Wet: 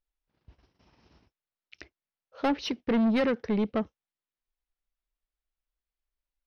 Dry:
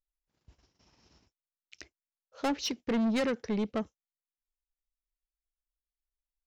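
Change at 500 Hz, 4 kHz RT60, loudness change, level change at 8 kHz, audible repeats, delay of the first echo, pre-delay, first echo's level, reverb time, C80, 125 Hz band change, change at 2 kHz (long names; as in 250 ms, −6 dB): +4.0 dB, no reverb audible, +3.5 dB, can't be measured, no echo audible, no echo audible, no reverb audible, no echo audible, no reverb audible, no reverb audible, +4.0 dB, +3.0 dB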